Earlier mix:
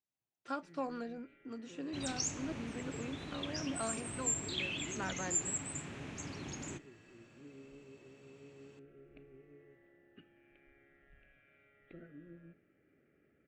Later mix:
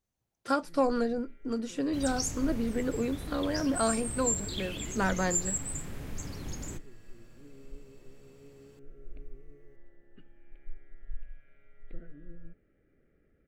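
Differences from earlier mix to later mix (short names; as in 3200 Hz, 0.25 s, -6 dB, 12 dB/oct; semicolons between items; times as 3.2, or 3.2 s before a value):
speech +10.5 dB; first sound: send off; master: remove speaker cabinet 140–7100 Hz, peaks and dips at 200 Hz -4 dB, 490 Hz -5 dB, 2600 Hz +5 dB, 4900 Hz -6 dB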